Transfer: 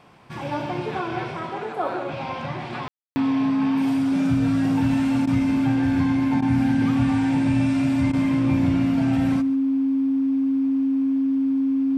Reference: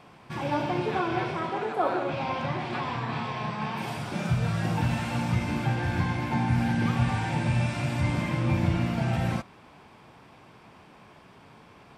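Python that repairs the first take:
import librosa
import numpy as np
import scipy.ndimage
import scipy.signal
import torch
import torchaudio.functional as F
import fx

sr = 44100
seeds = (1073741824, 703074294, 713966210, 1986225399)

y = fx.notch(x, sr, hz=270.0, q=30.0)
y = fx.fix_ambience(y, sr, seeds[0], print_start_s=0.0, print_end_s=0.5, start_s=2.88, end_s=3.16)
y = fx.fix_interpolate(y, sr, at_s=(5.26, 6.41, 8.12), length_ms=11.0)
y = fx.fix_echo_inverse(y, sr, delay_ms=141, level_db=-18.0)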